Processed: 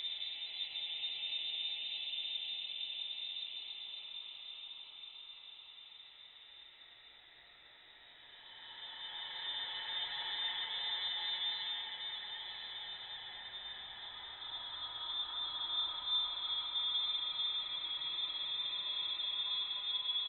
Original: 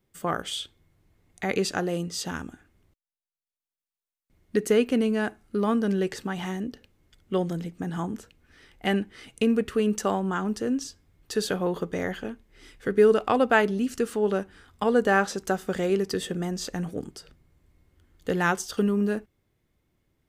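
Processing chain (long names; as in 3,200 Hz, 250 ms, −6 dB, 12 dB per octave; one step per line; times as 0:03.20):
downward compressor 2 to 1, threshold −35 dBFS, peak gain reduction 11.5 dB
voice inversion scrambler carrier 3,800 Hz
on a send: repeating echo 137 ms, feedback 47%, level −6 dB
on the sum: extreme stretch with random phases 10×, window 0.50 s, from 0:07.85
flutter between parallel walls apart 10 metres, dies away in 0.28 s
level −7.5 dB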